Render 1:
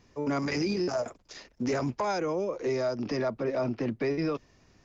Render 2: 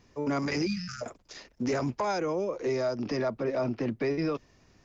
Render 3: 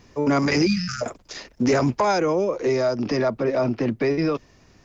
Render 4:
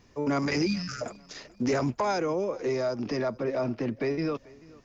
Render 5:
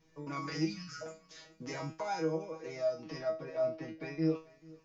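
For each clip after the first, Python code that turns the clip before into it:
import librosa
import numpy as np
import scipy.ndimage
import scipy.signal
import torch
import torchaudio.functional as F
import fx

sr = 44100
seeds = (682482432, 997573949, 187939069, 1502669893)

y1 = fx.spec_erase(x, sr, start_s=0.67, length_s=0.35, low_hz=220.0, high_hz=1200.0)
y2 = fx.rider(y1, sr, range_db=10, speed_s=2.0)
y2 = F.gain(torch.from_numpy(y2), 8.0).numpy()
y3 = fx.echo_feedback(y2, sr, ms=438, feedback_pct=36, wet_db=-23)
y3 = F.gain(torch.from_numpy(y3), -7.0).numpy()
y4 = fx.comb_fb(y3, sr, f0_hz=160.0, decay_s=0.28, harmonics='all', damping=0.0, mix_pct=100)
y4 = F.gain(torch.from_numpy(y4), 2.5).numpy()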